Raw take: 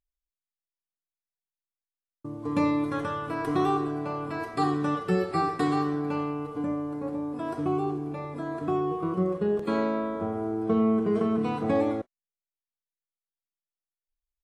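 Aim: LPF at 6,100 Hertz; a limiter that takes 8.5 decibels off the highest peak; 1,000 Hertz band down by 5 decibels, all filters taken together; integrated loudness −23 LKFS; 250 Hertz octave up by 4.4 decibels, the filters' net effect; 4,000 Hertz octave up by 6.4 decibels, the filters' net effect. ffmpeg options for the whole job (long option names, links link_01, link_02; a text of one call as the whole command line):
ffmpeg -i in.wav -af "lowpass=6100,equalizer=frequency=250:width_type=o:gain=6,equalizer=frequency=1000:width_type=o:gain=-7.5,equalizer=frequency=4000:width_type=o:gain=8.5,volume=5dB,alimiter=limit=-14dB:level=0:latency=1" out.wav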